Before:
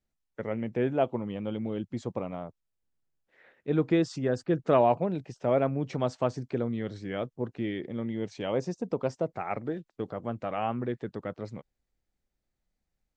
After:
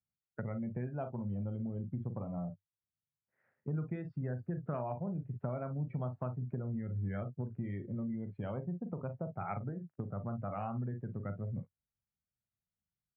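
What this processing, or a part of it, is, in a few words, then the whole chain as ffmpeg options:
bass amplifier: -filter_complex "[0:a]asettb=1/sr,asplit=3[s0][s1][s2];[s0]atrim=end=2.264[s3];[s1]atrim=start=2.26:end=3.75,asetpts=PTS-STARTPTS,afade=t=in:d=0.004:c=qsin,afade=t=out:st=1.486:d=0.004:c=qsin,highshelf=f=2600:g=-10[s4];[s2]atrim=start=3.746[s5];[s3][s4]acrossfade=d=0.004:c1=hsin:c2=qsin[s6];[s6][s5]acrossfade=d=0.004:c1=qsin:c2=hsin,aecho=1:1:40|57:0.422|0.224,afftdn=nr=19:nf=-39,bass=f=250:g=8,treble=f=4000:g=-1,acompressor=threshold=0.0112:ratio=5,highpass=89,equalizer=f=97:t=q:w=4:g=8,equalizer=f=150:t=q:w=4:g=4,equalizer=f=310:t=q:w=4:g=-8,equalizer=f=460:t=q:w=4:g=-6,equalizer=f=1400:t=q:w=4:g=5,lowpass=f=2300:w=0.5412,lowpass=f=2300:w=1.3066,volume=1.33"

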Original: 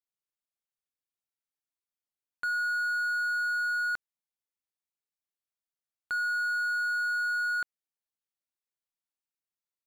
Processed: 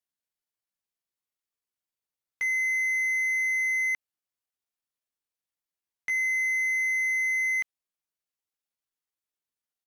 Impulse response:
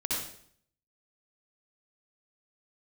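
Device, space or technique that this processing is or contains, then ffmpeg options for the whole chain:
chipmunk voice: -af "asetrate=62367,aresample=44100,atempo=0.707107,volume=1.41"

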